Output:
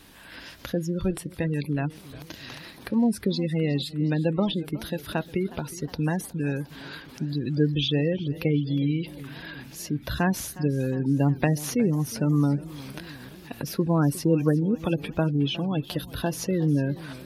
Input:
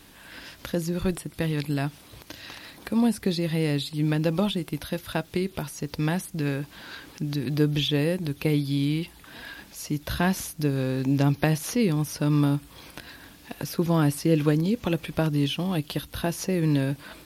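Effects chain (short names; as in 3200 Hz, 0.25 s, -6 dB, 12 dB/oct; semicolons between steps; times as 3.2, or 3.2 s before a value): spectral gate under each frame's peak -25 dB strong; warbling echo 0.362 s, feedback 62%, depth 114 cents, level -18.5 dB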